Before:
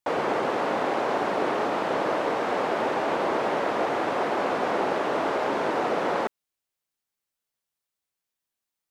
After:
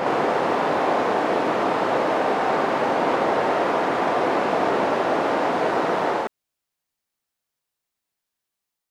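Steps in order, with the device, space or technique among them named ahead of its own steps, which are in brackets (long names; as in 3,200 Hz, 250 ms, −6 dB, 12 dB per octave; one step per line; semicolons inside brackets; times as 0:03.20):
reverse reverb (reversed playback; convolution reverb RT60 2.9 s, pre-delay 25 ms, DRR −2 dB; reversed playback)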